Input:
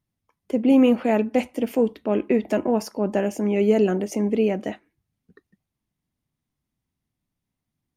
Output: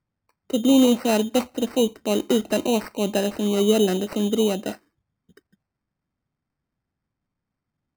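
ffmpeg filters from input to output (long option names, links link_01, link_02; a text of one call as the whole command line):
ffmpeg -i in.wav -af "acrusher=samples=13:mix=1:aa=0.000001" out.wav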